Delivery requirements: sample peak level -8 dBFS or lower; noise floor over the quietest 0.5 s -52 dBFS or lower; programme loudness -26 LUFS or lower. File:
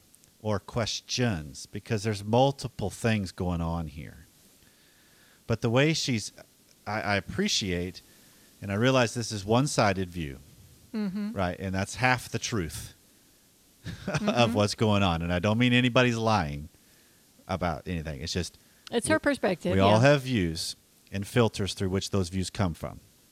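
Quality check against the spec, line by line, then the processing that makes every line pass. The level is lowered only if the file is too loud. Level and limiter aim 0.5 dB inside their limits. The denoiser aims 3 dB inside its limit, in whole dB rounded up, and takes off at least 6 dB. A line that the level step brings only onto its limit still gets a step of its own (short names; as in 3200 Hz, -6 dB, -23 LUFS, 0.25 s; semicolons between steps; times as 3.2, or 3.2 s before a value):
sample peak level -7.5 dBFS: fail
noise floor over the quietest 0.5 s -61 dBFS: OK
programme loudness -27.5 LUFS: OK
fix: limiter -8.5 dBFS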